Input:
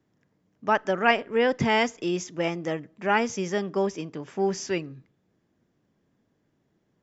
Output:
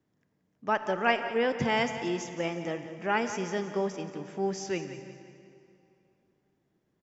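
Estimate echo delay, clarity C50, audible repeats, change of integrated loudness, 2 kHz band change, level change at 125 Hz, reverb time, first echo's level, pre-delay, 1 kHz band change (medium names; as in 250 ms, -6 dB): 177 ms, 8.5 dB, 3, -4.5 dB, -4.5 dB, -4.0 dB, 2.7 s, -13.0 dB, 29 ms, -4.0 dB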